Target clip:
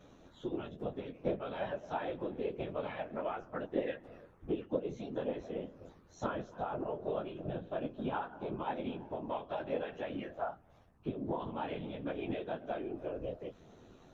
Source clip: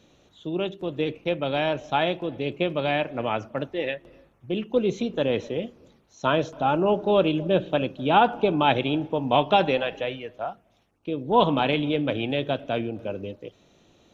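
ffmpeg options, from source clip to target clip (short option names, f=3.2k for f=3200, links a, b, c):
-af "highshelf=f=2k:t=q:w=1.5:g=-6.5,bandreject=f=60:t=h:w=6,bandreject=f=120:t=h:w=6,bandreject=f=180:t=h:w=6,bandreject=f=240:t=h:w=6,acompressor=threshold=-35dB:ratio=10,flanger=delay=6.9:depth=9.4:regen=-5:speed=0.2:shape=triangular,afftfilt=real='hypot(re,im)*cos(PI*b)':imag='0':win_size=2048:overlap=0.75,aeval=exprs='val(0)+0.0002*(sin(2*PI*50*n/s)+sin(2*PI*2*50*n/s)/2+sin(2*PI*3*50*n/s)/3+sin(2*PI*4*50*n/s)/4+sin(2*PI*5*50*n/s)/5)':c=same,afftfilt=real='hypot(re,im)*cos(2*PI*random(0))':imag='hypot(re,im)*sin(2*PI*random(1))':win_size=512:overlap=0.75,volume=13dB"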